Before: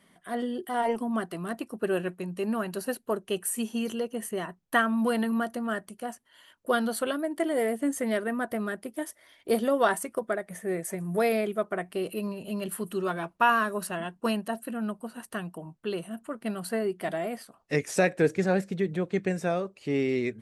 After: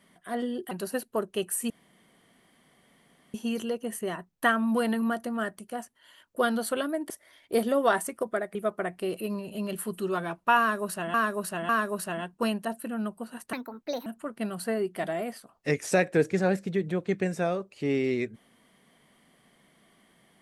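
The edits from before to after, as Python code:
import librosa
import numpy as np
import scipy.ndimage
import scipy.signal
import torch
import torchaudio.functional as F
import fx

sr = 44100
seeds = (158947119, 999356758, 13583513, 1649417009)

y = fx.edit(x, sr, fx.cut(start_s=0.71, length_s=1.94),
    fx.insert_room_tone(at_s=3.64, length_s=1.64),
    fx.cut(start_s=7.4, length_s=1.66),
    fx.cut(start_s=10.51, length_s=0.97),
    fx.repeat(start_s=13.52, length_s=0.55, count=3),
    fx.speed_span(start_s=15.36, length_s=0.75, speed=1.41), tone=tone)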